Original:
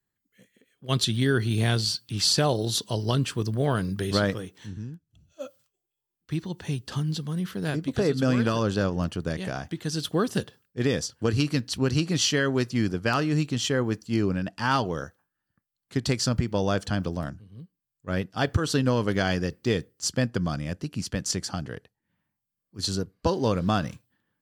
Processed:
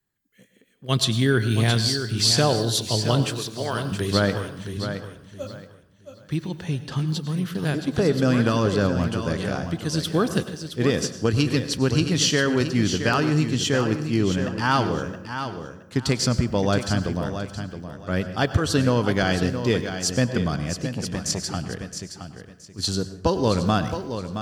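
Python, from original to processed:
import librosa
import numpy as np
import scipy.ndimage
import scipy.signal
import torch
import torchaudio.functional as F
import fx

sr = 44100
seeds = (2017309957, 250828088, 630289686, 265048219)

y = fx.highpass(x, sr, hz=810.0, slope=6, at=(3.33, 3.92))
y = fx.high_shelf(y, sr, hz=6100.0, db=-8.5, at=(6.64, 7.08))
y = fx.echo_feedback(y, sr, ms=670, feedback_pct=24, wet_db=-9.0)
y = fx.rev_plate(y, sr, seeds[0], rt60_s=0.68, hf_ratio=0.65, predelay_ms=85, drr_db=12.0)
y = fx.transformer_sat(y, sr, knee_hz=450.0, at=(20.89, 21.4))
y = y * librosa.db_to_amplitude(3.0)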